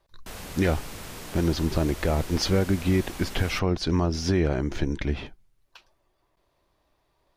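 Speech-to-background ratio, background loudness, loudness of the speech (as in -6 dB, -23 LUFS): 13.0 dB, -39.5 LUFS, -26.5 LUFS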